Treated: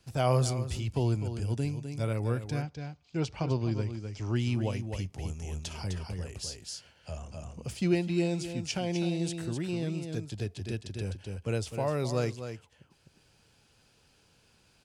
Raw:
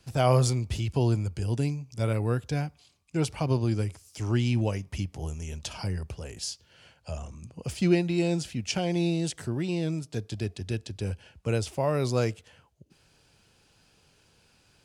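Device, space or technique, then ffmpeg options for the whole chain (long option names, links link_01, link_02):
ducked delay: -filter_complex "[0:a]asplit=3[link_01][link_02][link_03];[link_02]adelay=255,volume=-2dB[link_04];[link_03]apad=whole_len=666074[link_05];[link_04][link_05]sidechaincompress=threshold=-29dB:ratio=6:attack=12:release=1000[link_06];[link_01][link_06]amix=inputs=2:normalize=0,asettb=1/sr,asplit=3[link_07][link_08][link_09];[link_07]atrim=end=2.624[link_10];[link_08]atrim=start=2.62:end=4.36,asetpts=PTS-STARTPTS,afade=type=in:duration=0.004:curve=qsin,afade=type=out:start_time=1.736:duration=0.004:curve=qsin,lowpass=frequency=6400:width=0.5412,lowpass=frequency=6400:width=1.3066[link_11];[link_09]atrim=start=4.356[link_12];[link_10][link_11]acrossfade=duration=0.004:curve1=hsin:curve2=qsin[link_13];[link_13][link_12]acrossfade=duration=0.004:curve1=qsin:curve2=hsin,volume=-4dB"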